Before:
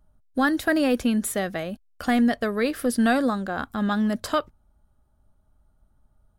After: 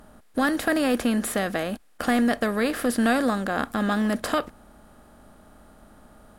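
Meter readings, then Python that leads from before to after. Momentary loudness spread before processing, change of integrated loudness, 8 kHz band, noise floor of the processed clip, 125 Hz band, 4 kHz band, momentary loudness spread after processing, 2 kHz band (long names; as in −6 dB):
9 LU, −0.5 dB, +0.5 dB, −55 dBFS, 0.0 dB, +1.0 dB, 7 LU, +1.0 dB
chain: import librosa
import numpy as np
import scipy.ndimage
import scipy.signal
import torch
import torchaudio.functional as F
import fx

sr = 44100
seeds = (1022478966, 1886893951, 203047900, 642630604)

y = fx.bin_compress(x, sr, power=0.6)
y = F.gain(torch.from_numpy(y), -3.0).numpy()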